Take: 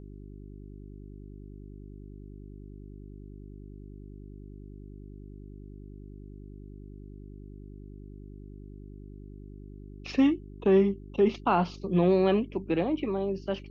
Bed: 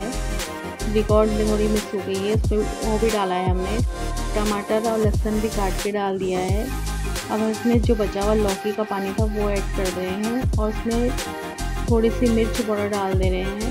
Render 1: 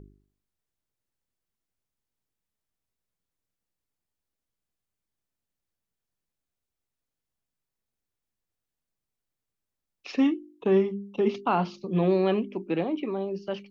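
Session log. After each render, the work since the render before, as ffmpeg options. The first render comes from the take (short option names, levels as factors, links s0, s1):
-af "bandreject=f=50:t=h:w=4,bandreject=f=100:t=h:w=4,bandreject=f=150:t=h:w=4,bandreject=f=200:t=h:w=4,bandreject=f=250:t=h:w=4,bandreject=f=300:t=h:w=4,bandreject=f=350:t=h:w=4,bandreject=f=400:t=h:w=4"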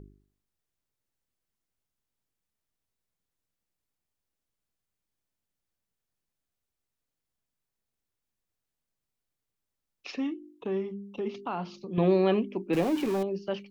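-filter_complex "[0:a]asettb=1/sr,asplit=3[s0][s1][s2];[s0]atrim=end=10.104[s3];[s1]atrim=start=10.1:end=11.98,asetpts=PTS-STARTPTS,afade=t=in:d=0.004:c=qsin,afade=t=out:st=1.876:d=0.004:c=qsin,acompressor=threshold=0.00631:ratio=1.5:attack=3.2:release=140:knee=1:detection=peak[s4];[s2]atrim=start=11.976[s5];[s3][s4]acrossfade=d=0.004:c1=hsin:c2=qsin[s6];[s6][s5]acrossfade=d=0.004:c1=qsin:c2=hsin,asettb=1/sr,asplit=3[s7][s8][s9];[s7]atrim=end=12.734[s10];[s8]atrim=start=12.73:end=13.23,asetpts=PTS-STARTPTS,afade=t=in:d=0.004:c=qsin,afade=t=out:st=0.496:d=0.004:c=qsin,aeval=exprs='val(0)+0.5*0.0237*sgn(val(0))':c=same[s11];[s9]atrim=start=13.226[s12];[s10][s11]acrossfade=d=0.004:c1=hsin:c2=qsin[s13];[s13][s12]acrossfade=d=0.004:c1=qsin:c2=hsin"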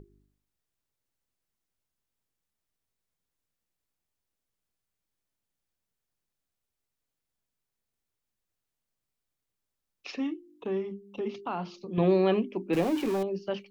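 -af "bandreject=f=50:t=h:w=6,bandreject=f=100:t=h:w=6,bandreject=f=150:t=h:w=6,bandreject=f=200:t=h:w=6,bandreject=f=250:t=h:w=6,bandreject=f=300:t=h:w=6"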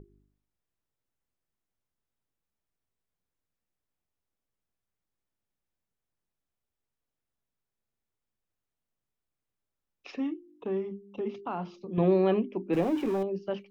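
-af "highshelf=f=2500:g=-9.5,bandreject=f=4400:w=18"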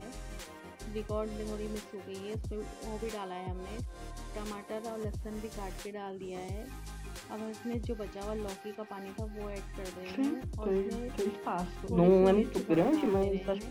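-filter_complex "[1:a]volume=0.126[s0];[0:a][s0]amix=inputs=2:normalize=0"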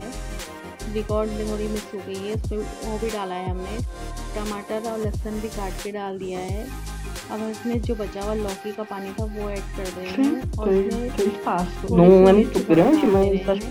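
-af "volume=3.76"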